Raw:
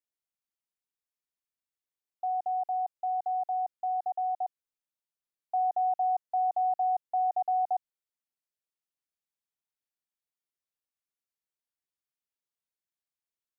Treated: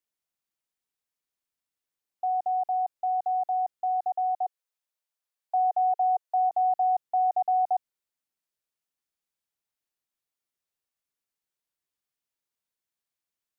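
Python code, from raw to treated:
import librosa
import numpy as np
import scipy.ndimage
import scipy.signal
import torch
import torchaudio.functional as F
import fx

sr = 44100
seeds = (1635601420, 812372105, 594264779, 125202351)

y = fx.steep_highpass(x, sr, hz=450.0, slope=48, at=(4.37, 6.49), fade=0.02)
y = F.gain(torch.from_numpy(y), 3.5).numpy()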